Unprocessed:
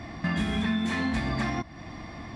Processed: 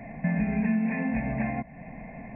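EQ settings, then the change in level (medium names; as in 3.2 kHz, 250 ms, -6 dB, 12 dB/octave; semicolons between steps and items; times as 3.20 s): brick-wall FIR low-pass 2.7 kHz; static phaser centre 330 Hz, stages 6; +3.0 dB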